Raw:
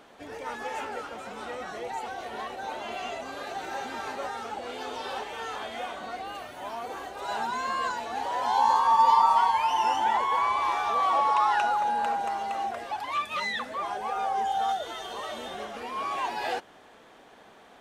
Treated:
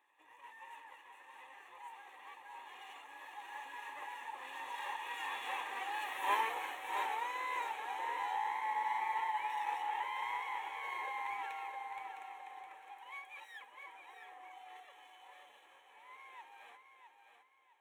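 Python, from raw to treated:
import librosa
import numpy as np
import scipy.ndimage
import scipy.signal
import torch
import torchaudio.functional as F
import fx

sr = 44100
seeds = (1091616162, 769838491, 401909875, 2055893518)

p1 = fx.lower_of_two(x, sr, delay_ms=1.2)
p2 = fx.doppler_pass(p1, sr, speed_mps=18, closest_m=1.9, pass_at_s=6.33)
p3 = scipy.signal.sosfilt(scipy.signal.butter(2, 410.0, 'highpass', fs=sr, output='sos'), p2)
p4 = fx.peak_eq(p3, sr, hz=1600.0, db=9.0, octaves=0.57)
p5 = fx.rider(p4, sr, range_db=5, speed_s=0.5)
p6 = fx.fixed_phaser(p5, sr, hz=1000.0, stages=8)
p7 = p6 + fx.echo_feedback(p6, sr, ms=660, feedback_pct=33, wet_db=-7.5, dry=0)
y = p7 * 10.0 ** (13.0 / 20.0)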